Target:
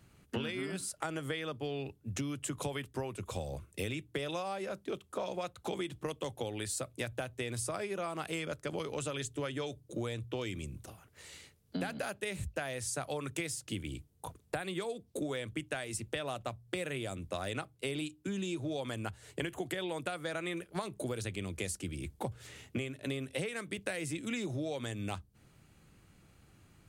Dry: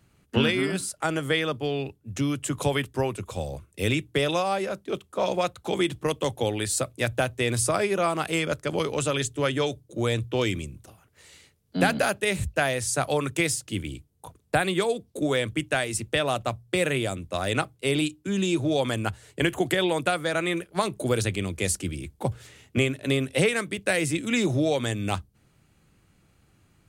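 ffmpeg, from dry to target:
ffmpeg -i in.wav -af "acompressor=threshold=-35dB:ratio=6" out.wav

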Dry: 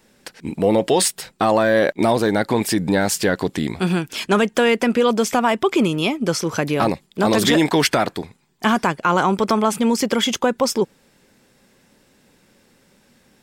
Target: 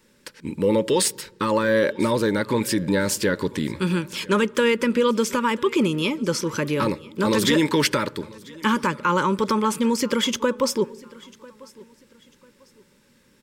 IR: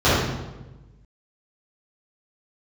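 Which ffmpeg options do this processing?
-filter_complex "[0:a]asuperstop=centerf=720:order=12:qfactor=3.2,aecho=1:1:995|1990:0.0708|0.0227,asplit=2[link_01][link_02];[1:a]atrim=start_sample=2205[link_03];[link_02][link_03]afir=irnorm=-1:irlink=0,volume=-47.5dB[link_04];[link_01][link_04]amix=inputs=2:normalize=0,volume=-3dB"

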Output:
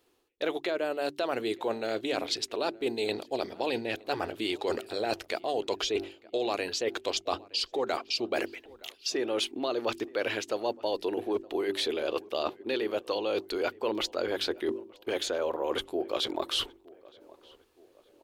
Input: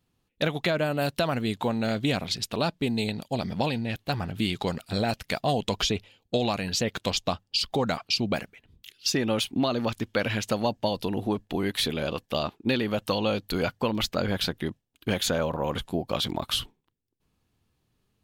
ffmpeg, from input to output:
ffmpeg -i in.wav -filter_complex "[0:a]acrossover=split=9400[link_01][link_02];[link_02]acompressor=threshold=-55dB:ratio=4:attack=1:release=60[link_03];[link_01][link_03]amix=inputs=2:normalize=0,lowshelf=frequency=250:width_type=q:width=3:gain=-13,bandreject=frequency=48.43:width_type=h:width=4,bandreject=frequency=96.86:width_type=h:width=4,bandreject=frequency=145.29:width_type=h:width=4,bandreject=frequency=193.72:width_type=h:width=4,bandreject=frequency=242.15:width_type=h:width=4,bandreject=frequency=290.58:width_type=h:width=4,bandreject=frequency=339.01:width_type=h:width=4,bandreject=frequency=387.44:width_type=h:width=4,areverse,acompressor=threshold=-35dB:ratio=6,areverse,asplit=2[link_04][link_05];[link_05]adelay=918,lowpass=frequency=1800:poles=1,volume=-22dB,asplit=2[link_06][link_07];[link_07]adelay=918,lowpass=frequency=1800:poles=1,volume=0.49,asplit=2[link_08][link_09];[link_09]adelay=918,lowpass=frequency=1800:poles=1,volume=0.49[link_10];[link_04][link_06][link_08][link_10]amix=inputs=4:normalize=0,volume=7dB" out.wav

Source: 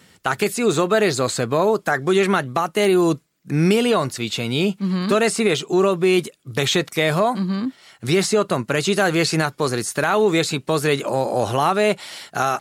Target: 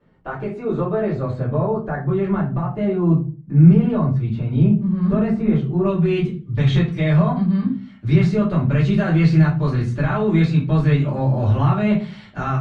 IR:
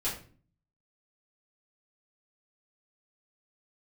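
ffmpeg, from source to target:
-filter_complex "[0:a]asetnsamples=nb_out_samples=441:pad=0,asendcmd='5.85 lowpass f 2400',lowpass=1100,asubboost=boost=11:cutoff=140[link_01];[1:a]atrim=start_sample=2205,asetrate=57330,aresample=44100[link_02];[link_01][link_02]afir=irnorm=-1:irlink=0,volume=-6.5dB"

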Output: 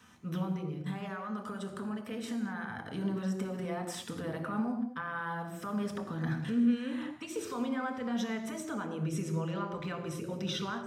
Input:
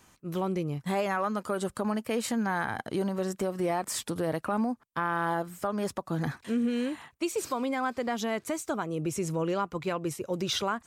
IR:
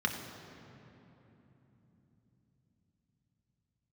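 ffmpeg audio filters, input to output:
-filter_complex "[0:a]alimiter=level_in=4.5dB:limit=-24dB:level=0:latency=1:release=158,volume=-4.5dB,asettb=1/sr,asplit=3[link_01][link_02][link_03];[link_01]atrim=end=0.444[link_04];[link_02]atrim=start=0.44:end=2.77,asetpts=PTS-STARTPTS,afade=type=in:duration=0.004:curve=qsin,afade=type=out:start_time=2.326:duration=0.004:curve=qsin,acompressor=threshold=-37dB:ratio=6[link_05];[link_03]atrim=start=2.766[link_06];[link_04][link_05]acrossfade=duration=0.004:curve1=hsin:curve2=qsin[link_07];[link_07][link_06]acrossfade=duration=0.004:curve1=qsin:curve2=hsin[link_08];[1:a]atrim=start_sample=2205,afade=type=out:start_time=0.29:duration=0.01,atrim=end_sample=13230[link_09];[link_08][link_09]afir=irnorm=-1:irlink=0,volume=-5.5dB"

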